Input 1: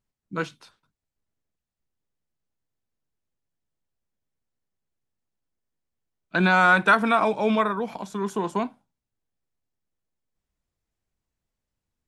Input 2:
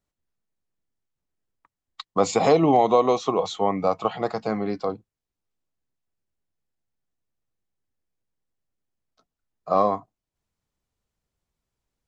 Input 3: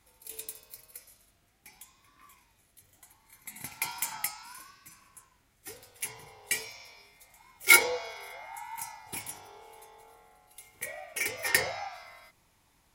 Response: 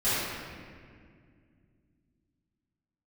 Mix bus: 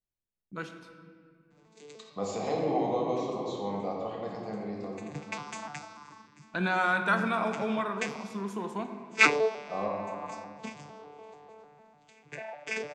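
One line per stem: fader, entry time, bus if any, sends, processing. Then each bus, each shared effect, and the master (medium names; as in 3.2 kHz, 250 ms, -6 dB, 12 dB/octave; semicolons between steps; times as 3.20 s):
-10.0 dB, 0.20 s, send -18.5 dB, gate with hold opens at -44 dBFS
-17.5 dB, 0.00 s, send -8.5 dB, peaking EQ 1.3 kHz -8 dB 0.27 oct
+0.5 dB, 1.50 s, no send, vocoder on a broken chord bare fifth, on D3, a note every 149 ms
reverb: on, RT60 2.1 s, pre-delay 4 ms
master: none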